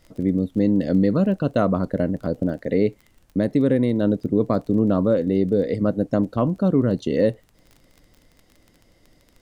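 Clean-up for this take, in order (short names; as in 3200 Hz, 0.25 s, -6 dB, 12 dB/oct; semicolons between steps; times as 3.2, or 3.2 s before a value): de-click; expander -50 dBFS, range -21 dB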